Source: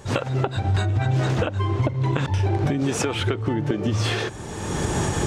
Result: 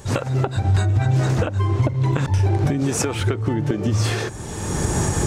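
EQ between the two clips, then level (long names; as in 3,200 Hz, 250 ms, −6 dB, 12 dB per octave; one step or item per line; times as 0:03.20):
low-shelf EQ 160 Hz +5.5 dB
high-shelf EQ 5,800 Hz +9 dB
dynamic equaliser 3,200 Hz, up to −6 dB, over −43 dBFS, Q 2
0.0 dB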